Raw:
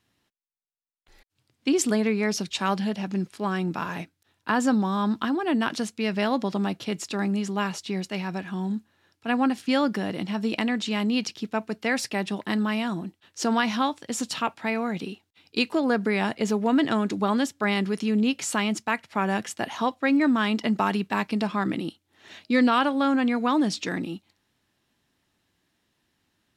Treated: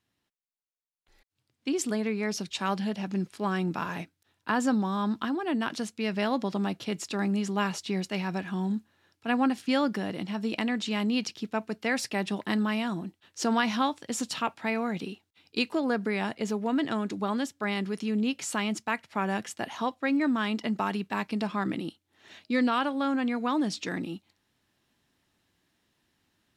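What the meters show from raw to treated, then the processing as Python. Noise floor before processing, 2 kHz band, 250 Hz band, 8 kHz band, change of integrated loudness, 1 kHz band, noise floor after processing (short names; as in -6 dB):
-76 dBFS, -4.0 dB, -4.0 dB, -4.0 dB, -4.0 dB, -4.0 dB, -80 dBFS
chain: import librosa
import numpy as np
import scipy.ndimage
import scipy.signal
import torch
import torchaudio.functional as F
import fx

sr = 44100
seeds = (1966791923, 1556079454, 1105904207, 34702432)

y = fx.rider(x, sr, range_db=10, speed_s=2.0)
y = y * 10.0 ** (-4.5 / 20.0)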